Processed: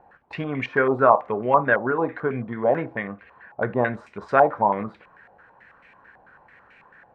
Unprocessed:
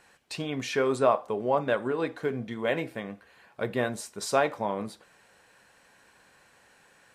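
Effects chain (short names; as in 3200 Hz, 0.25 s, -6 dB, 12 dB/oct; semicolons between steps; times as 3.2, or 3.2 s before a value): low shelf 210 Hz +5.5 dB; stepped low-pass 9.1 Hz 790–2300 Hz; gain +2 dB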